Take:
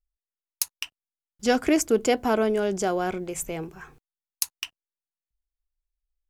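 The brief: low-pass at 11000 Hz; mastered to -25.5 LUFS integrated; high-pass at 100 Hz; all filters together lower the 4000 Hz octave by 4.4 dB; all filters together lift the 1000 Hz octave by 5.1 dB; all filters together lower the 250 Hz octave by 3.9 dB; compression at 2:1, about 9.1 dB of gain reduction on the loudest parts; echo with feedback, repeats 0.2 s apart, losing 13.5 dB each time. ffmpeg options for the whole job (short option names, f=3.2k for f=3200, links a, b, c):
-af "highpass=100,lowpass=11k,equalizer=f=250:t=o:g=-5.5,equalizer=f=1k:t=o:g=8.5,equalizer=f=4k:t=o:g=-7.5,acompressor=threshold=-33dB:ratio=2,aecho=1:1:200|400:0.211|0.0444,volume=8dB"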